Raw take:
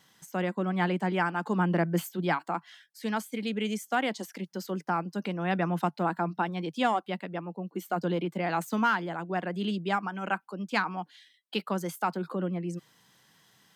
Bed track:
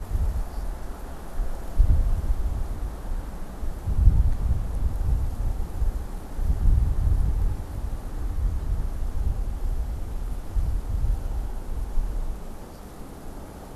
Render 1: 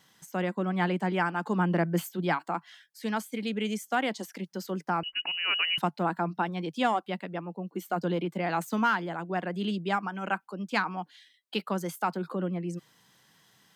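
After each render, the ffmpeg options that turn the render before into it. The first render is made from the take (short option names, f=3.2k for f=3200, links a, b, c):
-filter_complex "[0:a]asettb=1/sr,asplit=3[a][b][c];[a]atrim=end=5.034[d];[b]atrim=start=5.03:end=5.78,asetpts=PTS-STARTPTS,afade=t=in:d=0.004:c=qsin,afade=t=out:st=0.746:d=0.004:c=qsin,lowpass=f=2.6k:t=q:w=0.5098,lowpass=f=2.6k:t=q:w=0.6013,lowpass=f=2.6k:t=q:w=0.9,lowpass=f=2.6k:t=q:w=2.563,afreqshift=-3100[e];[c]atrim=start=5.776[f];[d][e]acrossfade=d=0.004:c1=hsin:c2=qsin[g];[g][f]acrossfade=d=0.004:c1=qsin:c2=hsin"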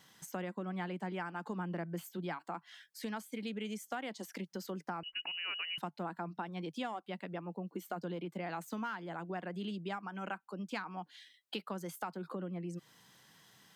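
-af "acompressor=threshold=-39dB:ratio=4"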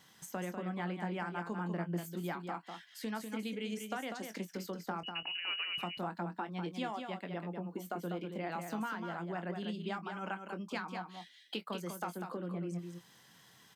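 -filter_complex "[0:a]asplit=2[a][b];[b]adelay=23,volume=-11dB[c];[a][c]amix=inputs=2:normalize=0,aecho=1:1:196:0.473"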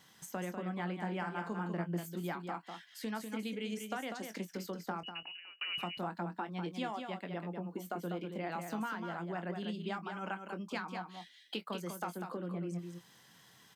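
-filter_complex "[0:a]asettb=1/sr,asplit=3[a][b][c];[a]atrim=end=0.964[d];[b]atrim=start=0.96:end=1.81,asetpts=PTS-STARTPTS,afade=t=in:d=0.004:c=qsin,afade=t=out:st=0.846:d=0.004:c=qsin,asplit=2[e][f];[f]adelay=48,volume=-11dB[g];[e][g]amix=inputs=2:normalize=0,atrim=end_sample=37485[h];[c]atrim=start=1.806[i];[d][h]acrossfade=d=0.004:c1=hsin:c2=qsin[j];[j][i]acrossfade=d=0.004:c1=qsin:c2=hsin,asplit=2[k][l];[k]atrim=end=5.61,asetpts=PTS-STARTPTS,afade=t=out:st=4.91:d=0.7[m];[l]atrim=start=5.61,asetpts=PTS-STARTPTS,afade=t=in:d=0.004:c=hsin[n];[m][n]concat=n=2:v=0:a=1"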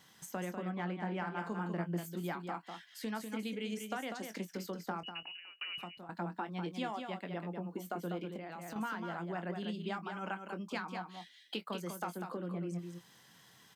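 -filter_complex "[0:a]asettb=1/sr,asplit=3[a][b][c];[a]atrim=end=0.714[d];[b]atrim=start=0.71:end=1.38,asetpts=PTS-STARTPTS,afade=t=in:d=0.004:c=qsin,afade=t=out:st=0.666:d=0.004:c=qsin,adynamicsmooth=sensitivity=7.5:basefreq=4.6k[e];[c]atrim=start=1.376[f];[d][e]acrossfade=d=0.004:c1=hsin:c2=qsin[g];[g][f]acrossfade=d=0.004:c1=qsin:c2=hsin,asettb=1/sr,asplit=3[h][i][j];[h]atrim=end=8.364[k];[i]atrim=start=8.36:end=8.76,asetpts=PTS-STARTPTS,afade=t=in:d=0.004:c=qsin,afade=t=out:st=0.396:d=0.004:c=qsin,acompressor=threshold=-41dB:ratio=6:attack=3.2:release=140:knee=1:detection=peak[l];[j]atrim=start=8.756[m];[k][l]acrossfade=d=0.004:c1=hsin:c2=qsin[n];[n][m]acrossfade=d=0.004:c1=qsin:c2=hsin,asplit=2[o][p];[o]atrim=end=6.09,asetpts=PTS-STARTPTS,afade=t=out:st=5.45:d=0.64:silence=0.158489[q];[p]atrim=start=6.09,asetpts=PTS-STARTPTS,afade=t=in:d=0.004:c=hsin:silence=0.158489[r];[q][r]concat=n=2:v=0:a=1"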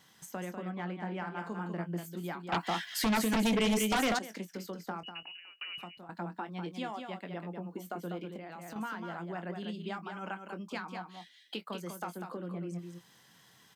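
-filter_complex "[0:a]asettb=1/sr,asplit=3[a][b][c];[a]atrim=end=2.524[d];[b]atrim=start=2.52:end=4.19,asetpts=PTS-STARTPTS,afade=t=in:d=0.004:c=qsin,afade=t=out:st=1.666:d=0.004:c=qsin,aeval=exprs='0.0596*sin(PI/2*3.98*val(0)/0.0596)':c=same[e];[c]atrim=start=4.186[f];[d][e]acrossfade=d=0.004:c1=hsin:c2=qsin[g];[g][f]acrossfade=d=0.004:c1=qsin:c2=hsin"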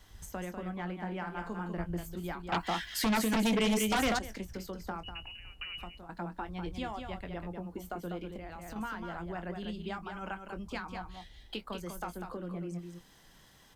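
-filter_complex "[1:a]volume=-26.5dB[a];[0:a][a]amix=inputs=2:normalize=0"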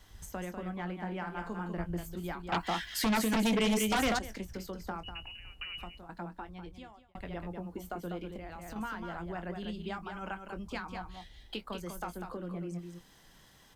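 -filter_complex "[0:a]asplit=2[a][b];[a]atrim=end=7.15,asetpts=PTS-STARTPTS,afade=t=out:st=5.93:d=1.22[c];[b]atrim=start=7.15,asetpts=PTS-STARTPTS,afade=t=in:d=0.004:c=hsin[d];[c][d]concat=n=2:v=0:a=1"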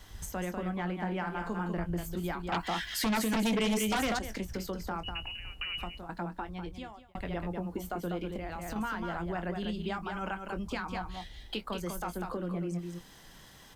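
-filter_complex "[0:a]asplit=2[a][b];[b]acompressor=threshold=-39dB:ratio=6,volume=0dB[c];[a][c]amix=inputs=2:normalize=0,alimiter=level_in=1dB:limit=-24dB:level=0:latency=1:release=13,volume=-1dB"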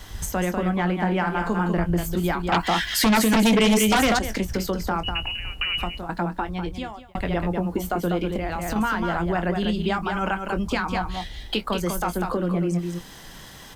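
-af "volume=11dB"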